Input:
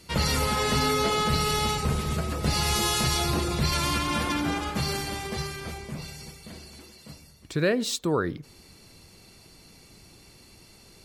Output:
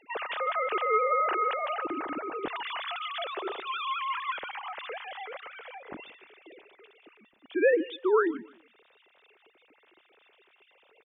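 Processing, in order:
three sine waves on the formant tracks
0:02.71–0:03.75: high-pass filter 350 Hz 12 dB per octave
repeating echo 151 ms, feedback 28%, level −21.5 dB
level −4 dB

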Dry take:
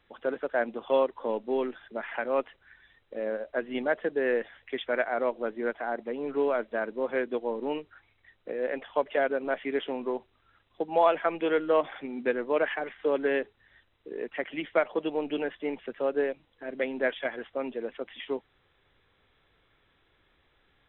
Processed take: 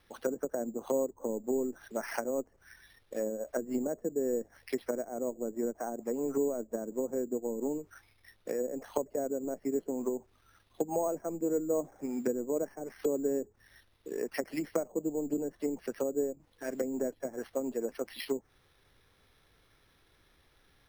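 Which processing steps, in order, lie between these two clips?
treble cut that deepens with the level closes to 380 Hz, closed at −27 dBFS
bass and treble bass +3 dB, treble +5 dB
decimation without filtering 6×

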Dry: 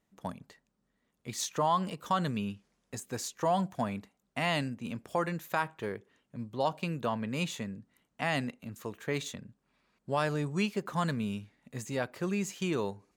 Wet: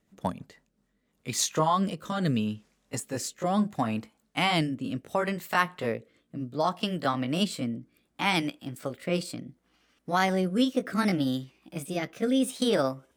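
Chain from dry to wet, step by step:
pitch glide at a constant tempo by +5 semitones starting unshifted
rotating-speaker cabinet horn 6.7 Hz, later 0.7 Hz, at 0:00.30
level +8.5 dB

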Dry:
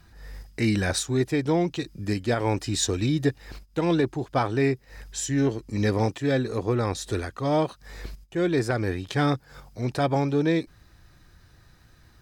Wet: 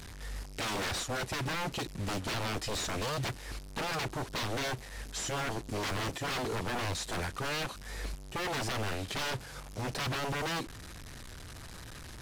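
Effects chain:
linear delta modulator 64 kbit/s, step −40 dBFS
wave folding −29 dBFS

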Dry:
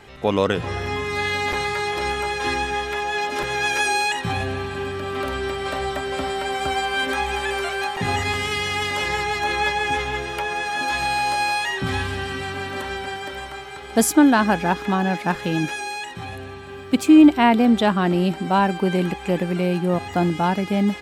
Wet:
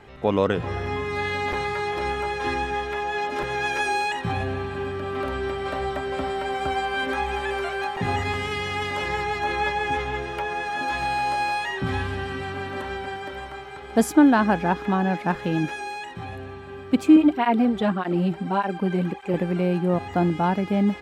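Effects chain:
high-shelf EQ 3,000 Hz −11 dB
0:17.16–0:19.34: through-zero flanger with one copy inverted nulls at 1.7 Hz, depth 4.2 ms
level −1 dB

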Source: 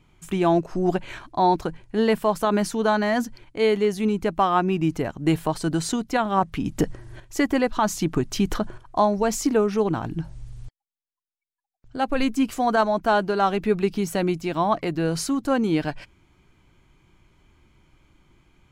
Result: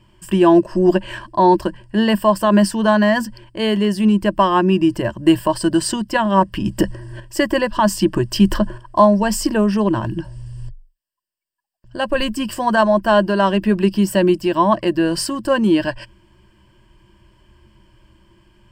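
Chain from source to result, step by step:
EQ curve with evenly spaced ripples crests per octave 1.3, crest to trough 14 dB
level +4 dB

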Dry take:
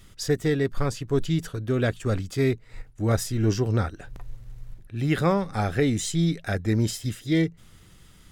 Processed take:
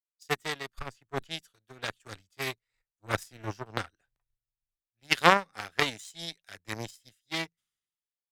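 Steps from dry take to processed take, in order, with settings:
harmonic generator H 3 −10 dB, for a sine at −10 dBFS
tilt shelving filter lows −8.5 dB, about 760 Hz
multiband upward and downward expander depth 100%
level −1.5 dB

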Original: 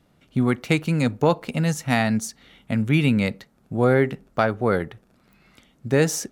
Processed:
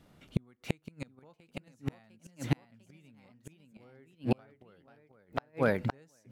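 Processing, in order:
delay with pitch and tempo change per echo 735 ms, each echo +1 semitone, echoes 3
gate with flip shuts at −14 dBFS, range −40 dB

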